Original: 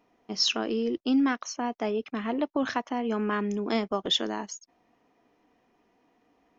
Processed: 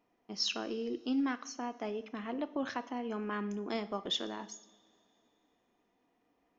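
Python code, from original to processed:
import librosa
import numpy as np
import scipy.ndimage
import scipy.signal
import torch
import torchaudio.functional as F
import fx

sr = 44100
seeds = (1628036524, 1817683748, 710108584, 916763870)

y = fx.rev_double_slope(x, sr, seeds[0], early_s=0.54, late_s=2.9, knee_db=-18, drr_db=11.5)
y = F.gain(torch.from_numpy(y), -8.5).numpy()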